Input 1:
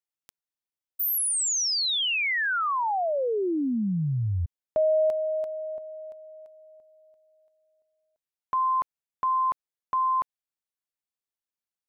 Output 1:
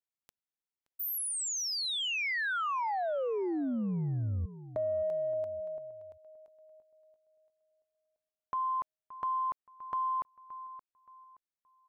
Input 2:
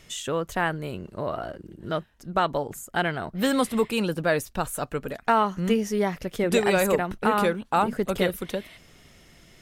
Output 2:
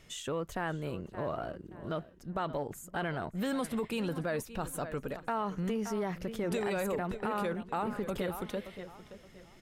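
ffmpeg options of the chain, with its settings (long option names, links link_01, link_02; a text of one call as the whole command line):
ffmpeg -i in.wav -filter_complex "[0:a]highshelf=frequency=2400:gain=-4.5,asplit=2[link_01][link_02];[link_02]adelay=573,lowpass=frequency=4000:poles=1,volume=-16.5dB,asplit=2[link_03][link_04];[link_04]adelay=573,lowpass=frequency=4000:poles=1,volume=0.3,asplit=2[link_05][link_06];[link_06]adelay=573,lowpass=frequency=4000:poles=1,volume=0.3[link_07];[link_01][link_03][link_05][link_07]amix=inputs=4:normalize=0,acompressor=threshold=-26dB:ratio=5:attack=3.4:release=20:knee=1:detection=rms,volume=-4.5dB" out.wav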